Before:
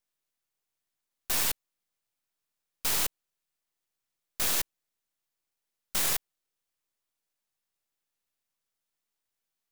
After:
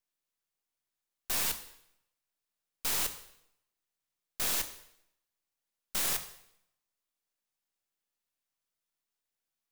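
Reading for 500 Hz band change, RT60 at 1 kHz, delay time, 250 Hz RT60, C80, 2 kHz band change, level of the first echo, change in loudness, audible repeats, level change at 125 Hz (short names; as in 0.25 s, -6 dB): -3.0 dB, 0.75 s, none, 0.85 s, 14.0 dB, -3.0 dB, none, -3.0 dB, none, -4.0 dB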